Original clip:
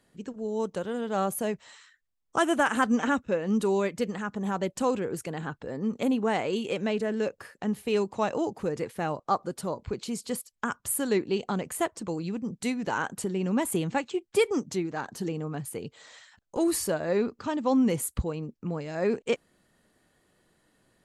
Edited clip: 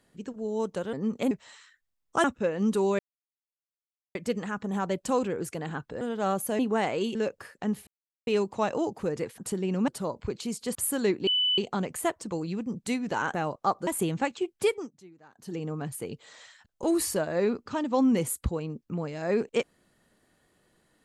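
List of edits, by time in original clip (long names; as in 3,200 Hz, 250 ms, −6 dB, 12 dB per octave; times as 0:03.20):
0:00.93–0:01.51: swap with 0:05.73–0:06.11
0:02.44–0:03.12: remove
0:03.87: splice in silence 1.16 s
0:06.67–0:07.15: remove
0:07.87: splice in silence 0.40 s
0:08.98–0:09.51: swap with 0:13.10–0:13.60
0:10.38–0:10.82: remove
0:11.34: insert tone 2,990 Hz −22 dBFS 0.31 s
0:14.33–0:15.39: duck −21.5 dB, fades 0.31 s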